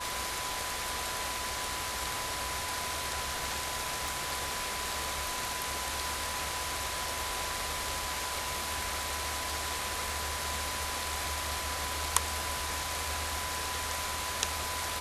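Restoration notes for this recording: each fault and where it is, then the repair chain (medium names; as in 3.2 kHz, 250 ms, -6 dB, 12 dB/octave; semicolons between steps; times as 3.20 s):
whine 1 kHz -40 dBFS
4.08 s: pop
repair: de-click; band-stop 1 kHz, Q 30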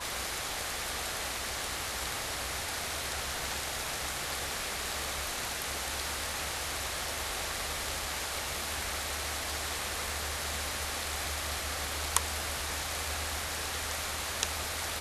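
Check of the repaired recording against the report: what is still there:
nothing left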